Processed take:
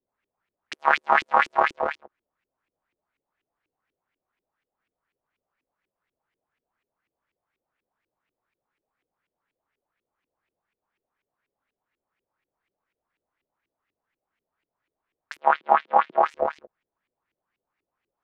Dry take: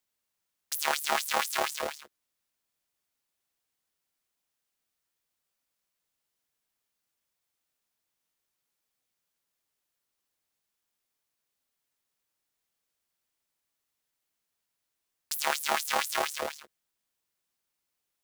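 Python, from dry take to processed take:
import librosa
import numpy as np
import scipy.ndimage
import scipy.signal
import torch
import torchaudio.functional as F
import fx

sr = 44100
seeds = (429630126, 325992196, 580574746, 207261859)

y = fx.filter_lfo_lowpass(x, sr, shape='saw_up', hz=4.1, low_hz=330.0, high_hz=2600.0, q=3.3)
y = fx.cheby1_bandpass(y, sr, low_hz=170.0, high_hz=3600.0, order=3, at=(15.39, 16.21), fade=0.02)
y = F.gain(torch.from_numpy(y), 4.5).numpy()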